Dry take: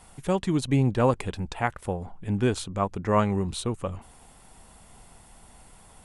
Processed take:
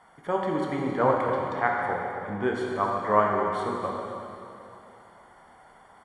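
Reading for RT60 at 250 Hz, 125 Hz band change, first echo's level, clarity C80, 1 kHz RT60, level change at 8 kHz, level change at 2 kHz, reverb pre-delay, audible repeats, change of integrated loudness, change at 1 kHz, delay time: 2.7 s, -10.5 dB, -12.5 dB, 1.0 dB, 2.8 s, under -10 dB, +4.5 dB, 7 ms, 1, 0.0 dB, +5.0 dB, 268 ms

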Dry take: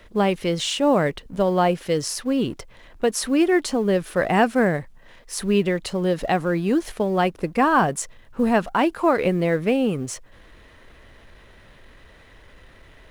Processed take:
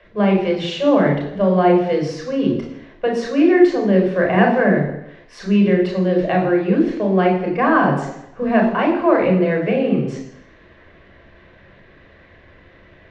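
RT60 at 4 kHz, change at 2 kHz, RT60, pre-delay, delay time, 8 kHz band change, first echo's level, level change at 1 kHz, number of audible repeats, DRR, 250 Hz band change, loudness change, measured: 0.85 s, +3.5 dB, 0.80 s, 26 ms, no echo, under -10 dB, no echo, +2.0 dB, no echo, 0.0 dB, +6.0 dB, +4.5 dB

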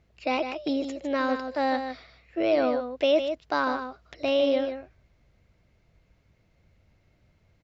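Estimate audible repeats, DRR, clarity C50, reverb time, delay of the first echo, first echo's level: 1, no reverb, no reverb, no reverb, 153 ms, -8.0 dB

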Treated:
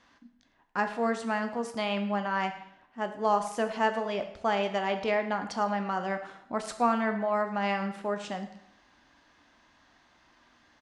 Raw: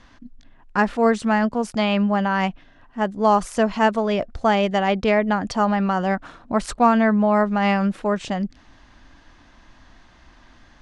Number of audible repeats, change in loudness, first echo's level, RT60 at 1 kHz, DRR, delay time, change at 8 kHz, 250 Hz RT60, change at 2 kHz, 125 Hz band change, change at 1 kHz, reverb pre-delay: 1, -9.5 dB, -19.0 dB, 0.80 s, 6.5 dB, 108 ms, -7.5 dB, 0.75 s, -7.5 dB, -13.5 dB, -8.0 dB, 8 ms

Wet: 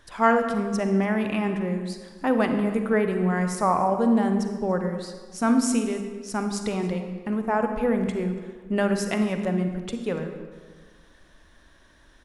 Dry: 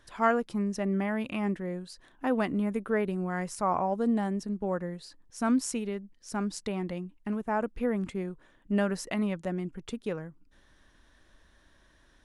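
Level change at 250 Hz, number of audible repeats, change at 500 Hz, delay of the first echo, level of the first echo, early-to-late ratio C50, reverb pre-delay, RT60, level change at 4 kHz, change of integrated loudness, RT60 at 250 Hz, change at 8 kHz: +6.0 dB, 1, +6.5 dB, 286 ms, -21.5 dB, 6.5 dB, 38 ms, 1.5 s, +6.0 dB, +6.5 dB, 1.7 s, +6.0 dB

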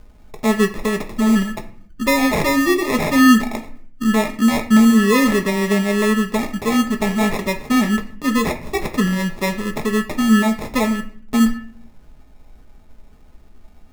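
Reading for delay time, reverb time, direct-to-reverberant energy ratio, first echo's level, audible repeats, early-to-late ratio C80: no echo, 0.55 s, 4.0 dB, no echo, no echo, 15.5 dB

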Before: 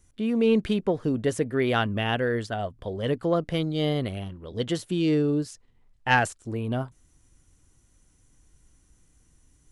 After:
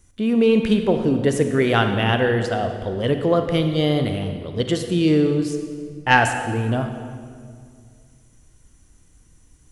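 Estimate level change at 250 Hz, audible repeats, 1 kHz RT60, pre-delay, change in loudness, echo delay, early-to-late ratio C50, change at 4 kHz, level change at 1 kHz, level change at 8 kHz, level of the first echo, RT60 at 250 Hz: +6.5 dB, no echo, 2.0 s, 33 ms, +6.0 dB, no echo, 6.5 dB, +6.0 dB, +6.5 dB, +6.0 dB, no echo, 2.5 s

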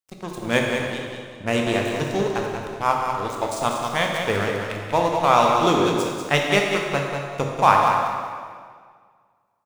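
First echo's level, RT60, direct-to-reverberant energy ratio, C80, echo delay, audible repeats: -6.5 dB, 1.9 s, -1.0 dB, 1.5 dB, 192 ms, 2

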